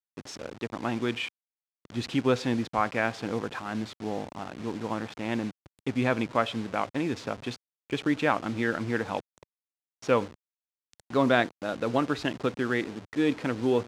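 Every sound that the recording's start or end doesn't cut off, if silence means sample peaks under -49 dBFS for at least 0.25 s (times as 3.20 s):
1.85–7.56 s
7.90–9.43 s
10.02–10.34 s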